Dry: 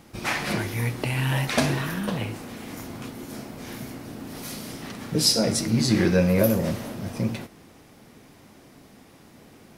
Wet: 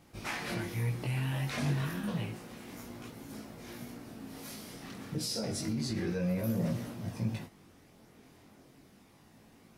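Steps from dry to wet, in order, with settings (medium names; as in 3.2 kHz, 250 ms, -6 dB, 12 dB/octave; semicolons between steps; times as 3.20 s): dynamic bell 140 Hz, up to +5 dB, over -35 dBFS, Q 0.91; peak limiter -16.5 dBFS, peak gain reduction 10 dB; chorus voices 2, 0.3 Hz, delay 20 ms, depth 3.2 ms; trim -6 dB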